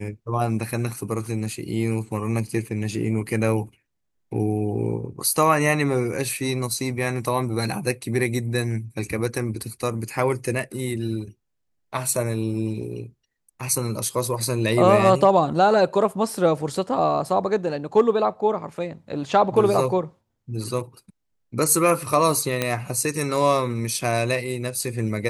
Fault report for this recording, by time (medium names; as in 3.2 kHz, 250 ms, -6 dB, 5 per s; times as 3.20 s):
22.62 s: pop -7 dBFS